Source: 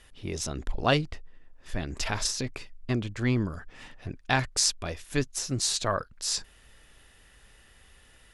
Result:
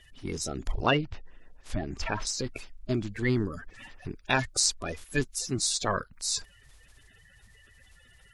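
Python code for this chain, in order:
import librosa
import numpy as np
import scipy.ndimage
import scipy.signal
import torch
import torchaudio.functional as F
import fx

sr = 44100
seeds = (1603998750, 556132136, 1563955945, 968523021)

y = fx.spec_quant(x, sr, step_db=30)
y = fx.env_lowpass_down(y, sr, base_hz=2800.0, full_db=-26.5, at=(0.9, 2.27))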